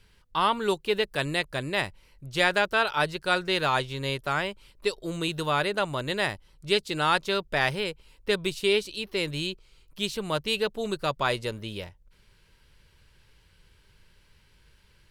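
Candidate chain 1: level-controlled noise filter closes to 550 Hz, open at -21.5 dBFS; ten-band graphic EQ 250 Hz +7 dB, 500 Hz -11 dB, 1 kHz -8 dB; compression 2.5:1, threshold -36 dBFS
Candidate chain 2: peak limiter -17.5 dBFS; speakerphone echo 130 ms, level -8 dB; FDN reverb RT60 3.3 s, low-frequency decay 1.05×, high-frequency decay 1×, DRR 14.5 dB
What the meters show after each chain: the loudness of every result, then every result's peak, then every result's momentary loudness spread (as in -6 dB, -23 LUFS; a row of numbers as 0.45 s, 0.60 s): -37.5 LUFS, -30.0 LUFS; -17.5 dBFS, -15.5 dBFS; 7 LU, 8 LU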